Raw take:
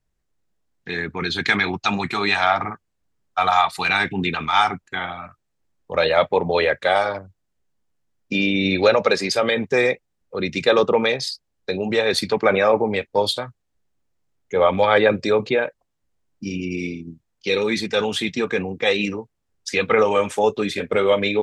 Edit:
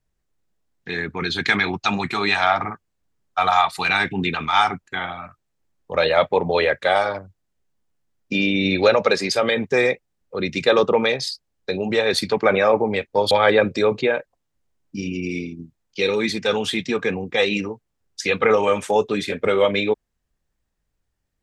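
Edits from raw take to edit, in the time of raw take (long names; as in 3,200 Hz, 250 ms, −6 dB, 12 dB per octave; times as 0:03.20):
0:13.31–0:14.79: remove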